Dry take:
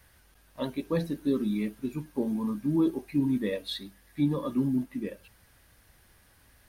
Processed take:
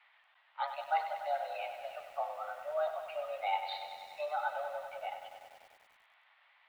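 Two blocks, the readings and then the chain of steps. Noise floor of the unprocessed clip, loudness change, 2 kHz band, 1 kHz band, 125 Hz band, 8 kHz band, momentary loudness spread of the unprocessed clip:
-61 dBFS, -7.5 dB, +3.5 dB, +11.5 dB, under -40 dB, no reading, 10 LU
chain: dead-time distortion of 0.051 ms; mistuned SSB +300 Hz 410–3200 Hz; bit-crushed delay 97 ms, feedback 80%, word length 10-bit, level -9 dB

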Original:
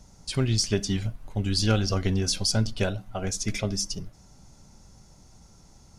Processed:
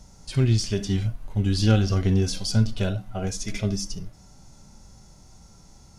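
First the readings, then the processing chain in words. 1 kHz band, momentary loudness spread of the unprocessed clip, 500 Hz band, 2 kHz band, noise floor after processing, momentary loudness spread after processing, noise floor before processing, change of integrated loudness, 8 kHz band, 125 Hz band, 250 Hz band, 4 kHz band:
-0.5 dB, 8 LU, +0.5 dB, -1.5 dB, -51 dBFS, 10 LU, -54 dBFS, +2.5 dB, -4.0 dB, +5.0 dB, +3.5 dB, -3.0 dB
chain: harmonic-percussive split percussive -12 dB; trim +6 dB

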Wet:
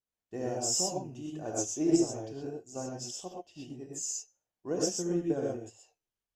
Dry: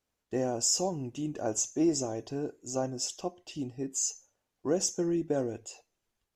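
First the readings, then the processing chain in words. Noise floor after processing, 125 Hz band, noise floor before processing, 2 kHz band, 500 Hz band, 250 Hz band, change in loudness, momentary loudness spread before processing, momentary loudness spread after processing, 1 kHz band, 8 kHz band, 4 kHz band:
under -85 dBFS, -2.0 dB, -85 dBFS, -3.0 dB, -1.5 dB, -0.5 dB, -1.0 dB, 12 LU, 17 LU, -2.5 dB, -2.5 dB, -2.0 dB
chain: gated-style reverb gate 150 ms rising, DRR -2 dB; vibrato 1.6 Hz 31 cents; upward expansion 1.5:1, over -44 dBFS; trim -2 dB

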